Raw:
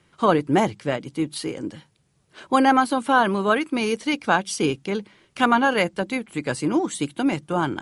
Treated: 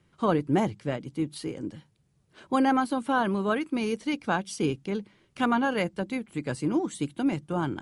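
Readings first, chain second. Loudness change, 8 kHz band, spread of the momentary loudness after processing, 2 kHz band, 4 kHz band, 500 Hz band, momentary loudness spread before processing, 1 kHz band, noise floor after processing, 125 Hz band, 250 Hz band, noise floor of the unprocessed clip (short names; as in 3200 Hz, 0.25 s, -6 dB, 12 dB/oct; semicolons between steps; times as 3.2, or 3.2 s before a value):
-6.0 dB, -9.0 dB, 9 LU, -8.5 dB, -9.0 dB, -6.0 dB, 10 LU, -8.0 dB, -67 dBFS, -2.0 dB, -4.0 dB, -64 dBFS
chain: low shelf 330 Hz +8.5 dB; gain -9 dB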